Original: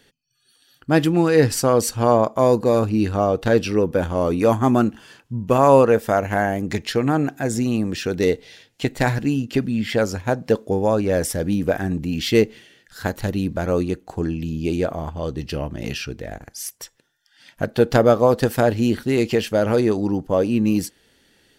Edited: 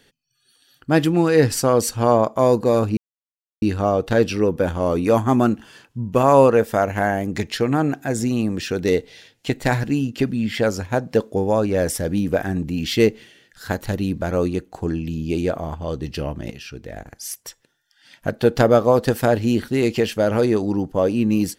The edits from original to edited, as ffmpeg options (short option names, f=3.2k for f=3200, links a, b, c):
-filter_complex "[0:a]asplit=3[a][b][c];[a]atrim=end=2.97,asetpts=PTS-STARTPTS,afade=t=out:st=2.966:d=0.004:c=hsin,apad=pad_dur=0.65[d];[b]atrim=start=2.97:end=15.86,asetpts=PTS-STARTPTS,afade=t=in:d=0.004:c=hsin,afade=t=out:st=12.886:d=0.004:c=hsin:silence=0.188365[e];[c]atrim=start=15.86,asetpts=PTS-STARTPTS,afade=t=in:d=0.78:c=qsin:silence=0.188365[f];[d][e][f]concat=n=3:v=0:a=1"